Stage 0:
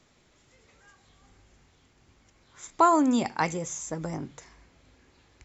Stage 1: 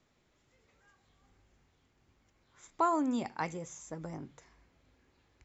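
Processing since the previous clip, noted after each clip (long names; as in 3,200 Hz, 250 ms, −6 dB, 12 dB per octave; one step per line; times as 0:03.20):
high-shelf EQ 4,300 Hz −6 dB
level −8.5 dB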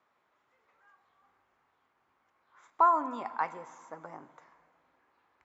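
resonant band-pass 1,100 Hz, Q 1.8
dense smooth reverb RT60 2.3 s, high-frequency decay 0.95×, DRR 14.5 dB
level +7.5 dB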